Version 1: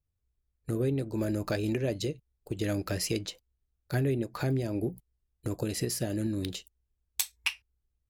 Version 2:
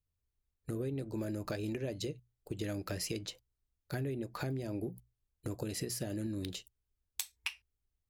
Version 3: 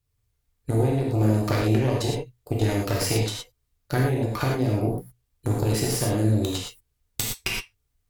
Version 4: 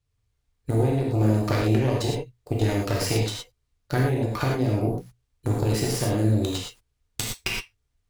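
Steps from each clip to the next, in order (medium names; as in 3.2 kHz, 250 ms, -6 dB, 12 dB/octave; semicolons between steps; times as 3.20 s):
hum notches 60/120 Hz; compression, threshold -30 dBFS, peak gain reduction 7.5 dB; trim -3.5 dB
Chebyshev shaper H 6 -12 dB, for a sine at -16 dBFS; gated-style reverb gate 140 ms flat, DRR -3 dB; trim +7 dB
median filter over 3 samples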